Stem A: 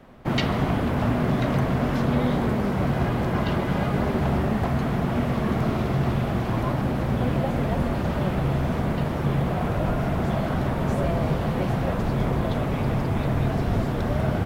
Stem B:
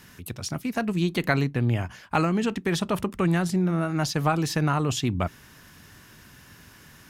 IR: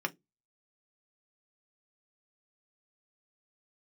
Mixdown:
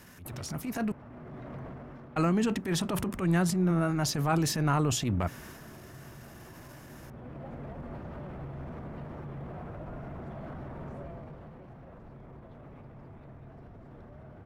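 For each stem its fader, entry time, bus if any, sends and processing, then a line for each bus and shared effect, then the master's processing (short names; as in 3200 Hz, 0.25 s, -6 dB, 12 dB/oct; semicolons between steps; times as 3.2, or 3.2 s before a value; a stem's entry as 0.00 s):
10.96 s -11.5 dB -> 11.59 s -19.5 dB, 0.00 s, send -19.5 dB, LPF 2300 Hz 6 dB/oct; limiter -22.5 dBFS, peak gain reduction 11 dB; auto duck -10 dB, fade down 0.55 s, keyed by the second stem
-2.0 dB, 0.00 s, muted 0.92–2.16, no send, transient shaper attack -10 dB, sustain +6 dB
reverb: on, RT60 0.15 s, pre-delay 3 ms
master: bell 3600 Hz -4.5 dB 1.3 oct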